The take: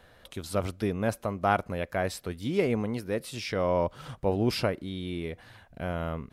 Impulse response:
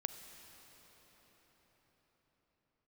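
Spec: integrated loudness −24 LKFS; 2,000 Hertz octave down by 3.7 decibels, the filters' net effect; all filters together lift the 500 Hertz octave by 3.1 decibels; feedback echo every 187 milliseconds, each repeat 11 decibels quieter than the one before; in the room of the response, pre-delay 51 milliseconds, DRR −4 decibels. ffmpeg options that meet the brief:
-filter_complex "[0:a]equalizer=frequency=500:width_type=o:gain=4,equalizer=frequency=2000:width_type=o:gain=-5.5,aecho=1:1:187|374|561:0.282|0.0789|0.0221,asplit=2[link_01][link_02];[1:a]atrim=start_sample=2205,adelay=51[link_03];[link_02][link_03]afir=irnorm=-1:irlink=0,volume=4.5dB[link_04];[link_01][link_04]amix=inputs=2:normalize=0,volume=-1dB"

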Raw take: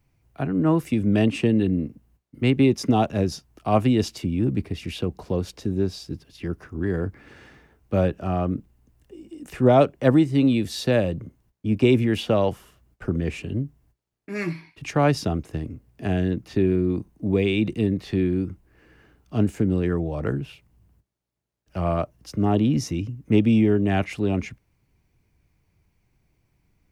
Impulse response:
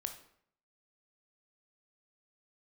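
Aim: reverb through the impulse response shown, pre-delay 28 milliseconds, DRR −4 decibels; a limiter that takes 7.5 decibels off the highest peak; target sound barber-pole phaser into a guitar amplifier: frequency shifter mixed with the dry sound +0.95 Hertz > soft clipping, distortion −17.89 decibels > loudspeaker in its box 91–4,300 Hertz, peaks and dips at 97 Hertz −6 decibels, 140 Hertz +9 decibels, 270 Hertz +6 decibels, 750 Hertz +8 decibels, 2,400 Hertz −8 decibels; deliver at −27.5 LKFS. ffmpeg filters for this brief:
-filter_complex "[0:a]alimiter=limit=-12.5dB:level=0:latency=1,asplit=2[link_01][link_02];[1:a]atrim=start_sample=2205,adelay=28[link_03];[link_02][link_03]afir=irnorm=-1:irlink=0,volume=5.5dB[link_04];[link_01][link_04]amix=inputs=2:normalize=0,asplit=2[link_05][link_06];[link_06]afreqshift=0.95[link_07];[link_05][link_07]amix=inputs=2:normalize=1,asoftclip=threshold=-11.5dB,highpass=91,equalizer=frequency=97:width_type=q:width=4:gain=-6,equalizer=frequency=140:width_type=q:width=4:gain=9,equalizer=frequency=270:width_type=q:width=4:gain=6,equalizer=frequency=750:width_type=q:width=4:gain=8,equalizer=frequency=2400:width_type=q:width=4:gain=-8,lowpass=frequency=4300:width=0.5412,lowpass=frequency=4300:width=1.3066,volume=-7dB"

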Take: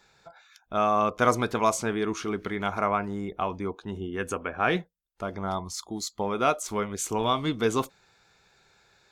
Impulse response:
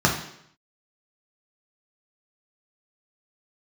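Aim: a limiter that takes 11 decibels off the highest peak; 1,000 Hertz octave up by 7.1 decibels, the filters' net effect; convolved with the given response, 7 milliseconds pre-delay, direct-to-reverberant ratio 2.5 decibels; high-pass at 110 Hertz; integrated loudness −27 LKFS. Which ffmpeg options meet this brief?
-filter_complex "[0:a]highpass=110,equalizer=frequency=1000:width_type=o:gain=9,alimiter=limit=-13dB:level=0:latency=1,asplit=2[link_01][link_02];[1:a]atrim=start_sample=2205,adelay=7[link_03];[link_02][link_03]afir=irnorm=-1:irlink=0,volume=-20.5dB[link_04];[link_01][link_04]amix=inputs=2:normalize=0,volume=-2.5dB"

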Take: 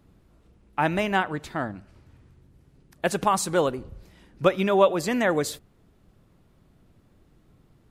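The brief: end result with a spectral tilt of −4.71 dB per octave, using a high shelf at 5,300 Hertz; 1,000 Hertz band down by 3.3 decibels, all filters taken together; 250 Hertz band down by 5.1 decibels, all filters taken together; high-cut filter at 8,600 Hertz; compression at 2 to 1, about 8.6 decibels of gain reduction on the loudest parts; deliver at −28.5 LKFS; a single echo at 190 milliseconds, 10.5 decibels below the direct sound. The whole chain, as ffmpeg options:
ffmpeg -i in.wav -af "lowpass=8600,equalizer=frequency=250:width_type=o:gain=-7.5,equalizer=frequency=1000:width_type=o:gain=-3.5,highshelf=frequency=5300:gain=-6.5,acompressor=threshold=-31dB:ratio=2,aecho=1:1:190:0.299,volume=5dB" out.wav

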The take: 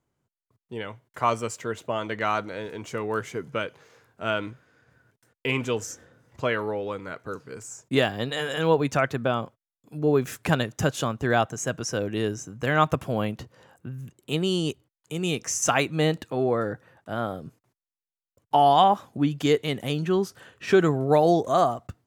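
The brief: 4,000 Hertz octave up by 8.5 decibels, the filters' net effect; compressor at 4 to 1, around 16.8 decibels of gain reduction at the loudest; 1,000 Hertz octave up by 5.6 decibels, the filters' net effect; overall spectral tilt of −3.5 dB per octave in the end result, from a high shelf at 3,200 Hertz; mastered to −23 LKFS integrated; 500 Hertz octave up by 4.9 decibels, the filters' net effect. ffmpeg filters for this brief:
ffmpeg -i in.wav -af "equalizer=frequency=500:width_type=o:gain=4.5,equalizer=frequency=1000:width_type=o:gain=5,highshelf=frequency=3200:gain=6,equalizer=frequency=4000:width_type=o:gain=7,acompressor=threshold=-30dB:ratio=4,volume=10dB" out.wav

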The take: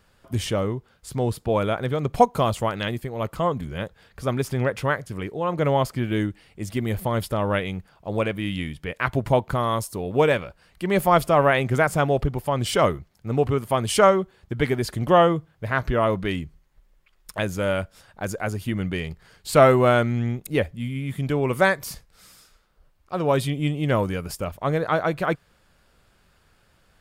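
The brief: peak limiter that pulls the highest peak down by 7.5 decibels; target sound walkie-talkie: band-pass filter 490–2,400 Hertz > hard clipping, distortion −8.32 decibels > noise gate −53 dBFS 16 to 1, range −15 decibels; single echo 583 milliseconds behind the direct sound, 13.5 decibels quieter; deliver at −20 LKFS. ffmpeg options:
ffmpeg -i in.wav -af "alimiter=limit=-11dB:level=0:latency=1,highpass=490,lowpass=2400,aecho=1:1:583:0.211,asoftclip=type=hard:threshold=-22.5dB,agate=range=-15dB:threshold=-53dB:ratio=16,volume=11.5dB" out.wav

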